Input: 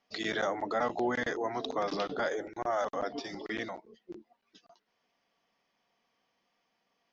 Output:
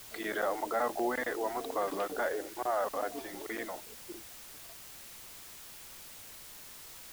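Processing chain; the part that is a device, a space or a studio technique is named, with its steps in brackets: wax cylinder (band-pass 320–2100 Hz; wow and flutter; white noise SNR 12 dB); bass shelf 84 Hz +8 dB

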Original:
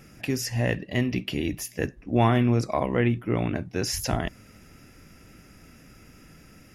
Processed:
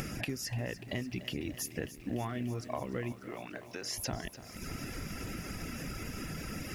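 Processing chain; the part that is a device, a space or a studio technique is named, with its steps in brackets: reverb removal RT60 0.75 s; upward and downward compression (upward compressor, threshold -27 dBFS; compression 6:1, threshold -34 dBFS, peak gain reduction 16.5 dB); 3.12–3.98 s: frequency weighting A; bit-crushed delay 294 ms, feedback 80%, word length 9-bit, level -14 dB

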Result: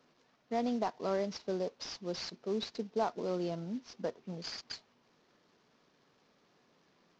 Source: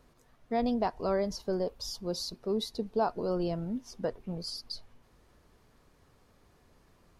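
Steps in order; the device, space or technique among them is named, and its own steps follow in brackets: early wireless headset (high-pass 160 Hz 24 dB/octave; CVSD coder 32 kbps); trim -3.5 dB

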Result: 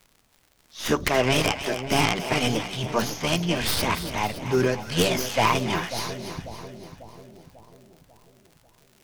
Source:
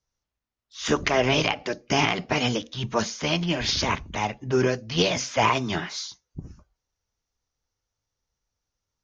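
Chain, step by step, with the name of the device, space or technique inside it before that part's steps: record under a worn stylus (tracing distortion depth 0.2 ms; crackle 89 per s -41 dBFS; pink noise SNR 39 dB); two-band feedback delay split 780 Hz, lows 544 ms, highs 284 ms, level -10 dB

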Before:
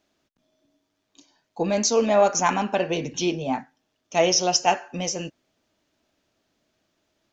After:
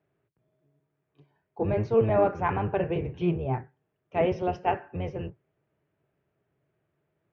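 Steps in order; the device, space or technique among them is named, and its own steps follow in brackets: sub-octave bass pedal (octave divider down 1 oct, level +4 dB; cabinet simulation 69–2300 Hz, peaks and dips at 150 Hz +4 dB, 250 Hz -7 dB, 410 Hz +8 dB); trim -6 dB

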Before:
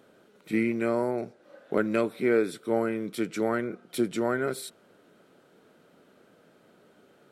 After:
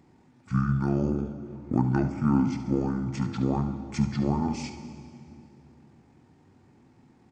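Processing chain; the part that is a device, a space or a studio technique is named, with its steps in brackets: monster voice (pitch shift -9 st; bass shelf 150 Hz +7 dB; delay 71 ms -12 dB; reverberation RT60 2.6 s, pre-delay 6 ms, DRR 8.5 dB); trim -1.5 dB

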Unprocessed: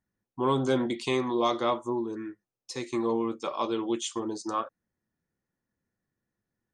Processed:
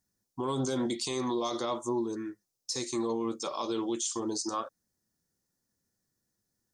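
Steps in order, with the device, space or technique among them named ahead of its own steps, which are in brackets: over-bright horn tweeter (resonant high shelf 3.7 kHz +11 dB, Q 1.5; peak limiter -23 dBFS, peak gain reduction 11.5 dB)

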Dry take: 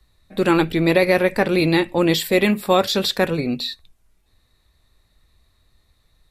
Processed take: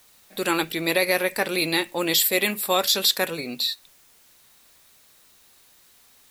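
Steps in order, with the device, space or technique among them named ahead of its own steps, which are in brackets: turntable without a phono preamp (RIAA curve recording; white noise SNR 30 dB); trim -4.5 dB

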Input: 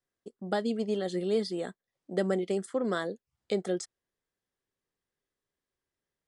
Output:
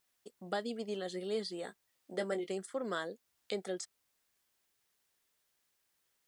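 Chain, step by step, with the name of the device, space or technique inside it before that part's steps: bass shelf 470 Hz -9 dB; 1.61–2.49 s: doubling 19 ms -8.5 dB; noise-reduction cassette on a plain deck (tape noise reduction on one side only encoder only; wow and flutter; white noise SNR 38 dB); trim -3 dB

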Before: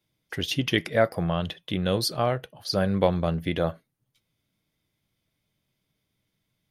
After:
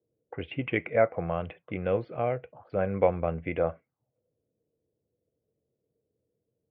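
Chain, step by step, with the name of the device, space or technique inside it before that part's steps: 2.02–2.79 s: dynamic bell 1.1 kHz, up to -6 dB, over -40 dBFS, Q 1.1; envelope filter bass rig (touch-sensitive low-pass 450–2300 Hz up, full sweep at -30 dBFS; cabinet simulation 67–2200 Hz, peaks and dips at 77 Hz +4 dB, 180 Hz -4 dB, 490 Hz +7 dB, 720 Hz +4 dB, 1.8 kHz -10 dB); trim -5.5 dB

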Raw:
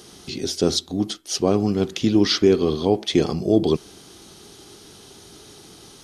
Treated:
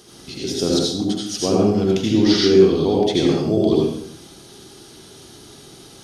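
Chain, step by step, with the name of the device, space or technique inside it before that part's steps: bathroom (reverberation RT60 0.70 s, pre-delay 70 ms, DRR -3.5 dB); trim -3 dB

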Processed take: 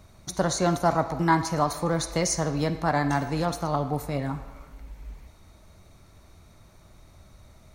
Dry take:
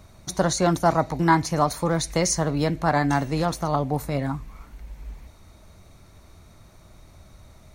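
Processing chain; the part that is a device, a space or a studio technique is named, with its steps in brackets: filtered reverb send (on a send: high-pass 590 Hz 6 dB/octave + low-pass 6.5 kHz 12 dB/octave + reverberation RT60 1.5 s, pre-delay 39 ms, DRR 10 dB); on the sum: trim -3 dB

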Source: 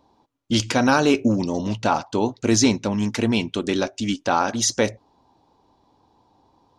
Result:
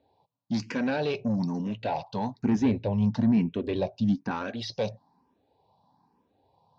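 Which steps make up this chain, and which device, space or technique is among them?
barber-pole phaser into a guitar amplifier (barber-pole phaser +1.1 Hz; saturation -18 dBFS, distortion -13 dB; cabinet simulation 93–4400 Hz, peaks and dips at 170 Hz +5 dB, 330 Hz -10 dB, 1.3 kHz -9 dB, 2.1 kHz -4 dB, 3.2 kHz -6 dB); 2.41–4.31 s: tilt EQ -2.5 dB/octave; trim -2 dB

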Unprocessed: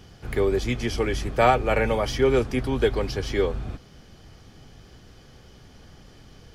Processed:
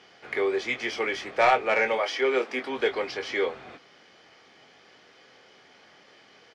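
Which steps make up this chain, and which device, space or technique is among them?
1.97–2.75 s: high-pass 380 Hz -> 150 Hz 24 dB/octave; intercom (band-pass 470–4700 Hz; peaking EQ 2.1 kHz +6.5 dB 0.41 oct; saturation -12.5 dBFS, distortion -17 dB; doubling 23 ms -8 dB)

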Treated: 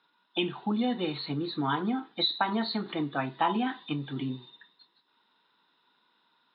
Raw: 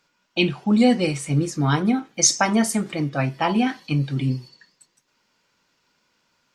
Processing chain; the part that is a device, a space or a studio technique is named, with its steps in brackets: hearing aid with frequency lowering (knee-point frequency compression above 3.4 kHz 4:1; compression 4:1, threshold -21 dBFS, peak gain reduction 10.5 dB; cabinet simulation 260–5500 Hz, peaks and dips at 560 Hz -10 dB, 960 Hz +5 dB, 2.3 kHz -9 dB, 4.6 kHz -9 dB); trim -1 dB

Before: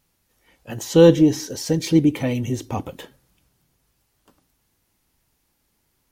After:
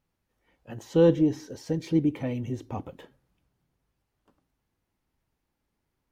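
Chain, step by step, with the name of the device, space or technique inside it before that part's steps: through cloth (treble shelf 3.6 kHz -14 dB); trim -7.5 dB

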